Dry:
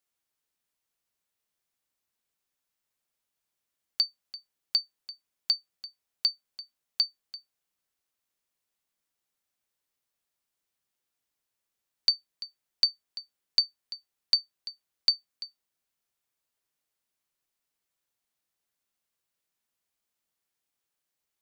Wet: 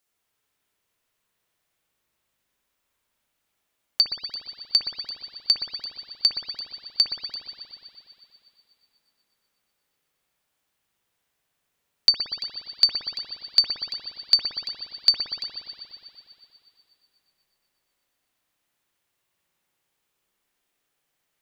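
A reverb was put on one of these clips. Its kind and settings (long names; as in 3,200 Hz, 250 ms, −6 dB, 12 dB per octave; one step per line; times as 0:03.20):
spring reverb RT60 2.9 s, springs 59 ms, chirp 65 ms, DRR −3.5 dB
level +6 dB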